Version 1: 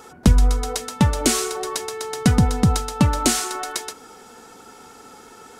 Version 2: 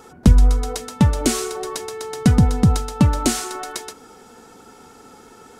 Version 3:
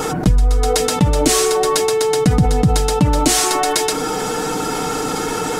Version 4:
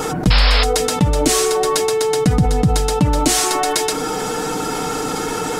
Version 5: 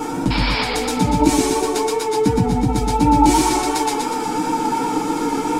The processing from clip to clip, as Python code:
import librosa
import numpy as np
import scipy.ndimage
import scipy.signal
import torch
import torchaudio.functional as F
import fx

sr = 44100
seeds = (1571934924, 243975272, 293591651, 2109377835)

y1 = fx.low_shelf(x, sr, hz=480.0, db=6.0)
y1 = y1 * 10.0 ** (-3.0 / 20.0)
y2 = y1 + 0.67 * np.pad(y1, (int(6.5 * sr / 1000.0), 0))[:len(y1)]
y2 = fx.env_flatten(y2, sr, amount_pct=70)
y2 = y2 * 10.0 ** (-3.0 / 20.0)
y3 = fx.spec_paint(y2, sr, seeds[0], shape='noise', start_s=0.3, length_s=0.34, low_hz=430.0, high_hz=5400.0, level_db=-17.0)
y3 = y3 * 10.0 ** (-1.0 / 20.0)
y4 = fx.small_body(y3, sr, hz=(290.0, 890.0, 2300.0), ring_ms=45, db=14)
y4 = fx.chorus_voices(y4, sr, voices=6, hz=0.42, base_ms=13, depth_ms=4.5, mix_pct=45)
y4 = fx.echo_warbled(y4, sr, ms=119, feedback_pct=56, rate_hz=2.8, cents=73, wet_db=-3.0)
y4 = y4 * 10.0 ** (-5.0 / 20.0)